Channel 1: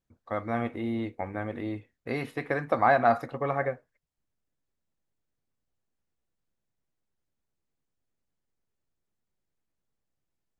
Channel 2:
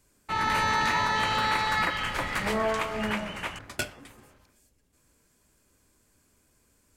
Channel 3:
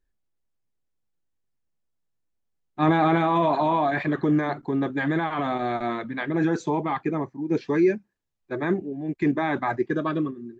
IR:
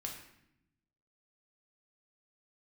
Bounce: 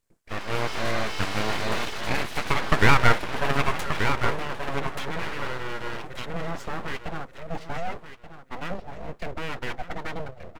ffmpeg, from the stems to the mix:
-filter_complex "[0:a]volume=0dB,asplit=3[a][b][c];[b]volume=-8.5dB[d];[1:a]volume=-12dB,asplit=2[e][f];[f]volume=-6.5dB[g];[2:a]alimiter=limit=-17dB:level=0:latency=1,volume=-10.5dB,asplit=2[h][i];[i]volume=-12dB[j];[c]apad=whole_len=467146[k];[h][k]sidechaincompress=threshold=-28dB:ratio=8:attack=16:release=465[l];[d][g][j]amix=inputs=3:normalize=0,aecho=0:1:1180|2360|3540|4720:1|0.23|0.0529|0.0122[m];[a][e][l][m]amix=inputs=4:normalize=0,equalizer=f=280:t=o:w=0.41:g=-5.5,dynaudnorm=f=110:g=11:m=8.5dB,aeval=exprs='abs(val(0))':c=same"

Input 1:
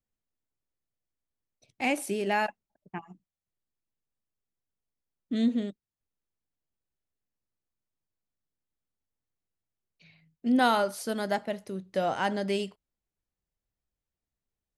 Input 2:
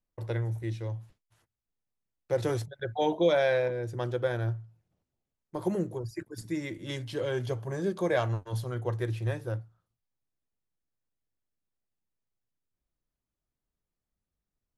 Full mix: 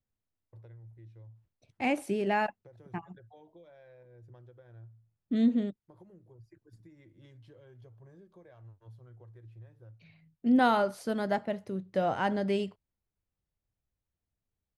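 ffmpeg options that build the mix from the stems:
-filter_complex "[0:a]volume=-0.5dB[a];[1:a]acompressor=threshold=-36dB:ratio=6,adelay=350,volume=-18dB[b];[a][b]amix=inputs=2:normalize=0,equalizer=f=95:t=o:w=1.2:g=8,highshelf=f=3.7k:g=-11.5"

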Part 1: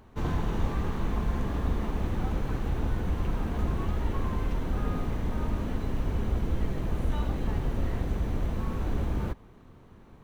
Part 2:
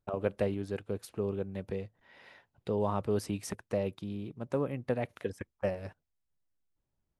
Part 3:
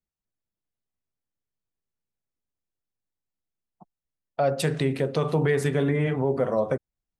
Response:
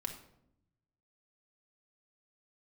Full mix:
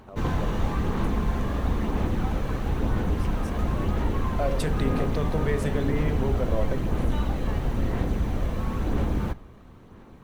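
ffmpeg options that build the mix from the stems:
-filter_complex "[0:a]lowshelf=f=76:g=-6,aphaser=in_gain=1:out_gain=1:delay=1.8:decay=0.25:speed=1:type=sinusoidal,volume=2.5dB,asplit=2[a][b];[b]volume=-12dB[c];[1:a]volume=-9dB[d];[2:a]volume=-5.5dB[e];[3:a]atrim=start_sample=2205[f];[c][f]afir=irnorm=-1:irlink=0[g];[a][d][e][g]amix=inputs=4:normalize=0"

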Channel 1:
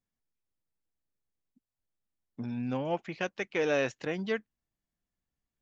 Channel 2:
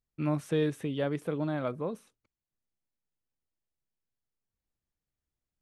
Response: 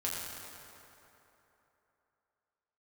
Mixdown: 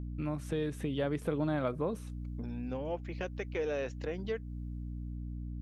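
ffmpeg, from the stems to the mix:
-filter_complex "[0:a]equalizer=f=460:t=o:w=0.77:g=7,volume=-3.5dB[a];[1:a]dynaudnorm=f=210:g=9:m=10dB,aeval=exprs='val(0)+0.0141*(sin(2*PI*60*n/s)+sin(2*PI*2*60*n/s)/2+sin(2*PI*3*60*n/s)/3+sin(2*PI*4*60*n/s)/4+sin(2*PI*5*60*n/s)/5)':c=same,volume=0dB[b];[a][b]amix=inputs=2:normalize=0,acompressor=threshold=-37dB:ratio=2"

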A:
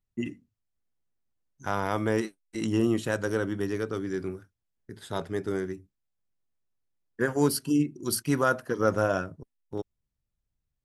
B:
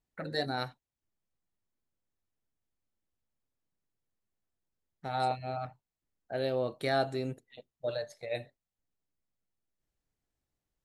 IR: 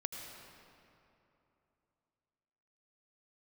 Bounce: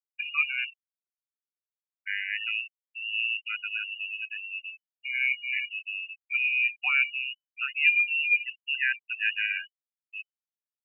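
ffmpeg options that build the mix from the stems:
-filter_complex "[0:a]lowpass=f=1.2k:t=q:w=2,adelay=400,volume=-5.5dB[a];[1:a]equalizer=f=590:t=o:w=0.26:g=12.5,volume=1dB[b];[a][b]amix=inputs=2:normalize=0,afftfilt=real='re*gte(hypot(re,im),0.0562)':imag='im*gte(hypot(re,im),0.0562)':win_size=1024:overlap=0.75,lowpass=f=2.6k:t=q:w=0.5098,lowpass=f=2.6k:t=q:w=0.6013,lowpass=f=2.6k:t=q:w=0.9,lowpass=f=2.6k:t=q:w=2.563,afreqshift=-3000"

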